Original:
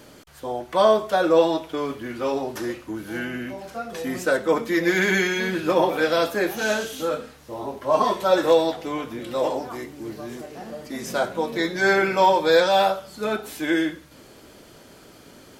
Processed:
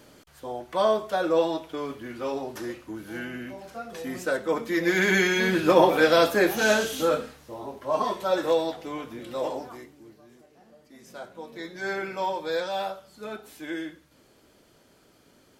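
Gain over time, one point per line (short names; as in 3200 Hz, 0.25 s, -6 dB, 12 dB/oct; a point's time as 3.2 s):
4.53 s -5.5 dB
5.52 s +2 dB
7.18 s +2 dB
7.59 s -6 dB
9.62 s -6 dB
10.21 s -19 dB
10.91 s -19 dB
11.92 s -11.5 dB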